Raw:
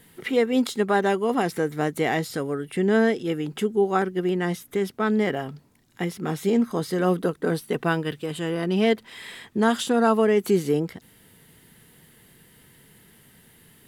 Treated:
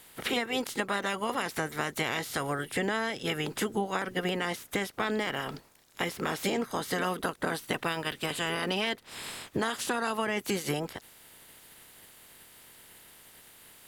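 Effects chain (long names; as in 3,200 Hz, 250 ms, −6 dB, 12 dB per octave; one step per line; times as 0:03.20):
ceiling on every frequency bin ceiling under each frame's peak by 20 dB
downward compressor, threshold −27 dBFS, peak gain reduction 12 dB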